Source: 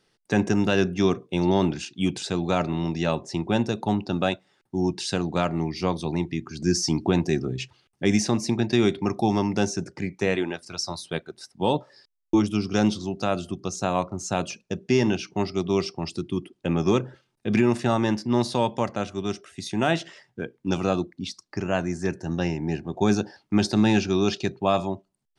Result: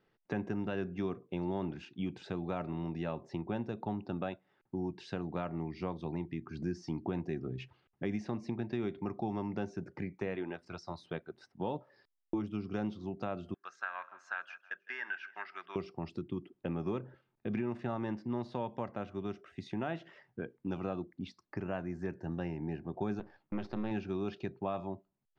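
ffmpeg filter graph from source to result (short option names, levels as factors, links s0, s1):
-filter_complex "[0:a]asettb=1/sr,asplit=3[s0][s1][s2];[s0]atrim=end=13.544[s3];[s1]atrim=start=13.54:end=15.76,asetpts=PTS-STARTPTS,afade=t=in:d=0.004:c=qsin,afade=t=out:st=2.216:d=0.004:c=qsin,highpass=f=1600:t=q:w=9.6,highshelf=f=3000:g=-10,aecho=1:1:158|316:0.0794|0.0262,atrim=end_sample=97902[s4];[s2]atrim=start=15.756[s5];[s3][s4]acrossfade=d=0.004:c1=hsin:c2=qsin[s6];[s6][s5]acrossfade=d=0.004:c1=qsin:c2=hsin,asettb=1/sr,asplit=3[s7][s8][s9];[s7]atrim=end=23.194[s10];[s8]atrim=start=23.19:end=23.91,asetpts=PTS-STARTPTS,afade=t=in:d=0.004:c=qsin,afade=t=out:st=0.716:d=0.004:c=qsin,aeval=exprs='if(lt(val(0),0),0.251*val(0),val(0))':c=same,lowpass=6000[s11];[s9]atrim=start=23.906[s12];[s10][s11]acrossfade=d=0.004:c1=hsin:c2=qsin[s13];[s13][s12]acrossfade=d=0.004:c1=qsin:c2=hsin,acompressor=threshold=0.0251:ratio=2.5,lowpass=2100,volume=0.596"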